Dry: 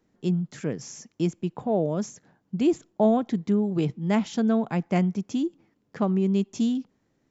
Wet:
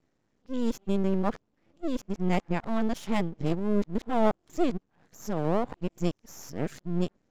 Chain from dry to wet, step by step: whole clip reversed; half-wave rectifier

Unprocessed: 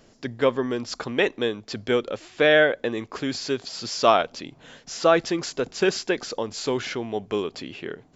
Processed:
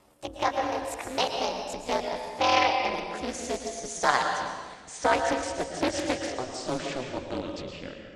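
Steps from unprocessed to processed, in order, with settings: gliding pitch shift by +9.5 st ending unshifted; ring modulator 130 Hz; reverb RT60 1.4 s, pre-delay 0.105 s, DRR 3.5 dB; Doppler distortion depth 0.47 ms; gain -2 dB

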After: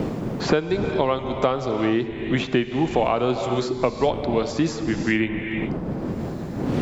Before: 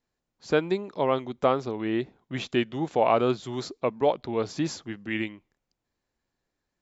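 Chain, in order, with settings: wind noise 250 Hz -41 dBFS; non-linear reverb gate 0.44 s flat, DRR 9 dB; three-band squash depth 100%; gain +3.5 dB

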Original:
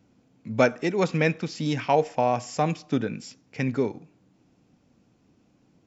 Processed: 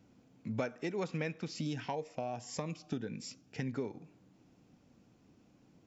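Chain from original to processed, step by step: compressor 4:1, threshold -33 dBFS, peak gain reduction 16 dB; 1.52–3.74 cascading phaser rising 1.7 Hz; gain -2 dB

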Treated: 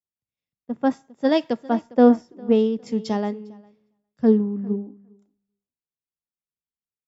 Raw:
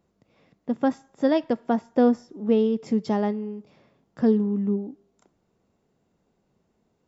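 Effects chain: on a send: feedback echo 0.406 s, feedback 19%, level -15 dB; on the sum: three-band expander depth 100%

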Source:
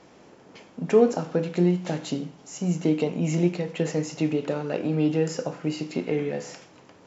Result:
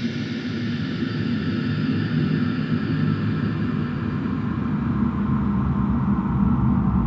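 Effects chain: tape stop at the end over 1.56 s; two-slope reverb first 0.41 s, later 2.6 s, from -16 dB, DRR 12 dB; Paulstretch 16×, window 0.50 s, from 5.93; gain +6.5 dB

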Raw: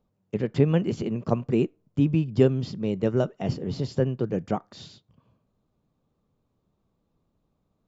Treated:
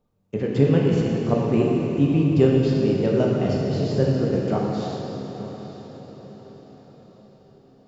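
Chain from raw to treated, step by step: diffused feedback echo 0.9 s, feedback 42%, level -13 dB; plate-style reverb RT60 3.1 s, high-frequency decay 0.9×, DRR -3 dB

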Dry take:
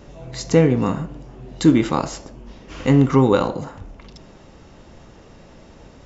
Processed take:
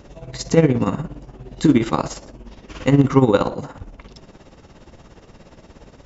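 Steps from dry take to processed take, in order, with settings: tremolo 17 Hz, depth 69%; gain +3 dB

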